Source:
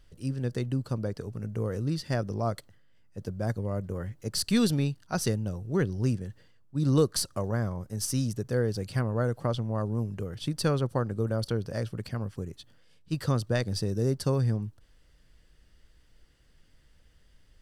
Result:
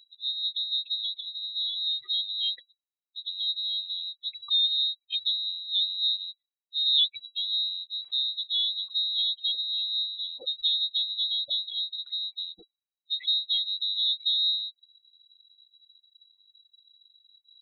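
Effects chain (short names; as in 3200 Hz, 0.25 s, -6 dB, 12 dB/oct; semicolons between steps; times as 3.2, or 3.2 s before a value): spectral contrast raised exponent 3.3; added harmonics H 2 -19 dB, 3 -39 dB, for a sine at -14.5 dBFS; inverted band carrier 3900 Hz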